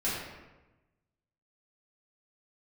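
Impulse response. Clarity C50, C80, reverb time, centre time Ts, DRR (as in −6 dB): 0.0 dB, 2.5 dB, 1.1 s, 76 ms, −9.5 dB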